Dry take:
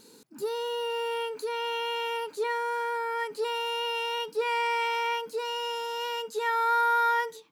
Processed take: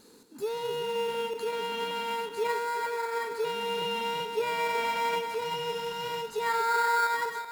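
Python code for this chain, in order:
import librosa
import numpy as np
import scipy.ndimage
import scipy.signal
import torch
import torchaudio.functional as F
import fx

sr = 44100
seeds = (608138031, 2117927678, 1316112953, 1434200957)

p1 = fx.reverse_delay_fb(x, sr, ms=191, feedback_pct=56, wet_db=-7)
p2 = fx.sample_hold(p1, sr, seeds[0], rate_hz=3000.0, jitter_pct=0)
p3 = p1 + (p2 * 10.0 ** (-7.5 / 20.0))
y = p3 * 10.0 ** (-3.5 / 20.0)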